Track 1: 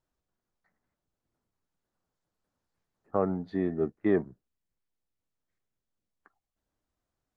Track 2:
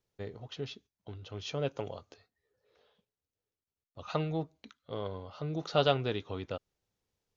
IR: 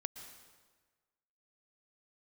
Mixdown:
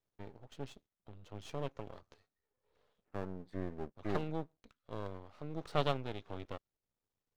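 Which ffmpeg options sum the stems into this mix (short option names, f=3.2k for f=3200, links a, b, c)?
-filter_complex "[0:a]volume=-7.5dB[a];[1:a]highshelf=f=2.6k:g=-7.5,volume=-2dB[b];[a][b]amix=inputs=2:normalize=0,aeval=exprs='max(val(0),0)':c=same,tremolo=f=1.4:d=0.34"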